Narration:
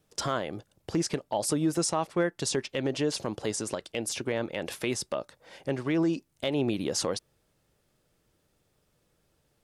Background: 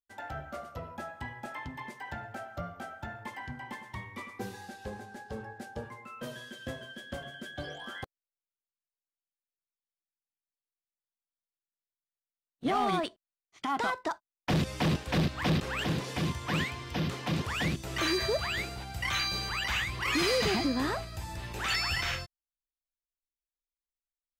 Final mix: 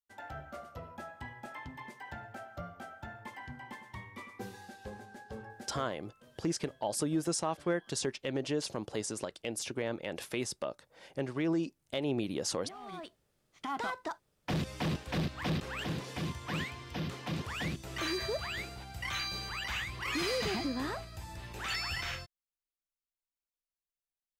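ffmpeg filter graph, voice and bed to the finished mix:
-filter_complex "[0:a]adelay=5500,volume=-5dB[a];[1:a]volume=10dB,afade=t=out:st=5.65:d=0.41:silence=0.16788,afade=t=in:st=12.81:d=0.73:silence=0.188365[b];[a][b]amix=inputs=2:normalize=0"

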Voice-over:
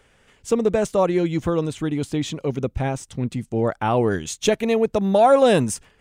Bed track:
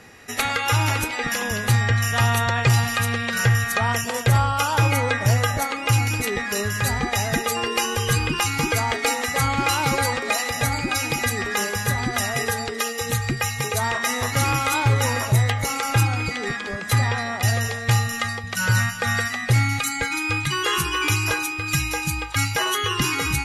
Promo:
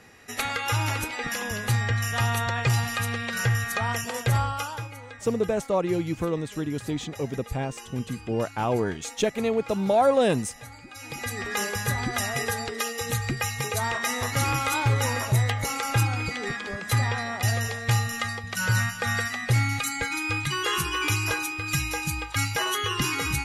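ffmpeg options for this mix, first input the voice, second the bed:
-filter_complex "[0:a]adelay=4750,volume=-5.5dB[a];[1:a]volume=11.5dB,afade=t=out:st=4.42:d=0.46:silence=0.16788,afade=t=in:st=10.94:d=0.67:silence=0.141254[b];[a][b]amix=inputs=2:normalize=0"

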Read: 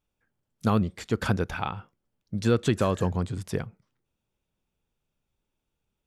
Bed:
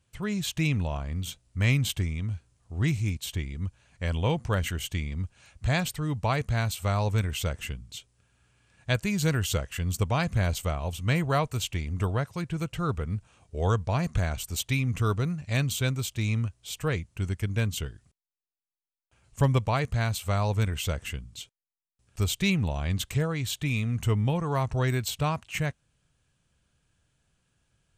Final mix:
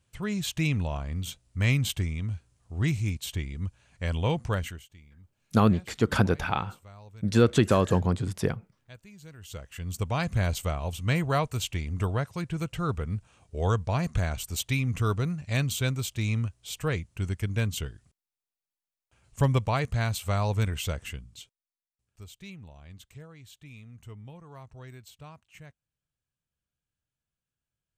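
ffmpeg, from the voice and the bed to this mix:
-filter_complex "[0:a]adelay=4900,volume=2.5dB[a];[1:a]volume=21.5dB,afade=t=out:st=4.49:d=0.37:silence=0.0794328,afade=t=in:st=9.37:d=0.98:silence=0.0794328,afade=t=out:st=20.69:d=1.49:silence=0.112202[b];[a][b]amix=inputs=2:normalize=0"

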